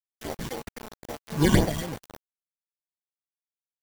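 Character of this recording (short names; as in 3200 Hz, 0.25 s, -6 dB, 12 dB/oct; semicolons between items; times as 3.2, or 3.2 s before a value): aliases and images of a low sample rate 1300 Hz, jitter 0%; phasing stages 8, 3.8 Hz, lowest notch 570–3600 Hz; a quantiser's noise floor 6-bit, dither none; Vorbis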